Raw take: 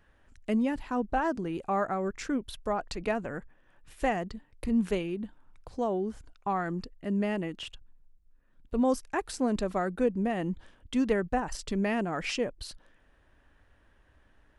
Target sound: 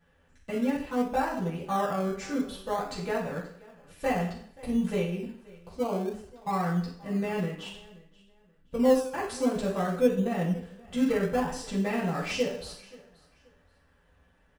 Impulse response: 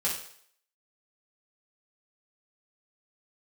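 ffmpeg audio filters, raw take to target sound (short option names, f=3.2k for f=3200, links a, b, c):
-filter_complex "[0:a]aecho=1:1:529|1058:0.0794|0.0199[a];[1:a]atrim=start_sample=2205[b];[a][b]afir=irnorm=-1:irlink=0,asplit=2[c][d];[d]acrusher=samples=19:mix=1:aa=0.000001:lfo=1:lforange=11.4:lforate=0.56,volume=-11.5dB[e];[c][e]amix=inputs=2:normalize=0,volume=-7dB"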